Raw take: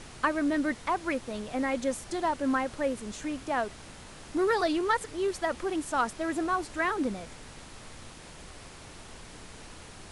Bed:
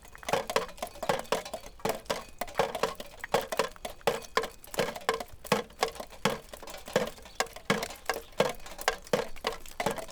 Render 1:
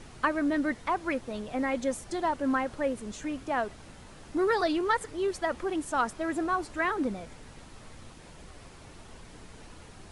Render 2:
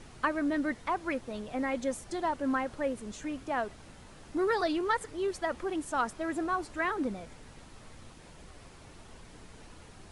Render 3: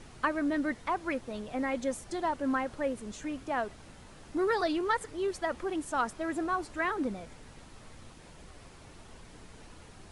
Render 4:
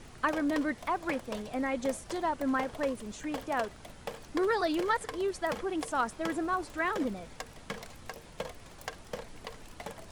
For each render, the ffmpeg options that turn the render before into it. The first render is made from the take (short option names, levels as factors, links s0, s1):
-af "afftdn=nr=6:nf=-48"
-af "volume=0.75"
-af anull
-filter_complex "[1:a]volume=0.251[s0];[0:a][s0]amix=inputs=2:normalize=0"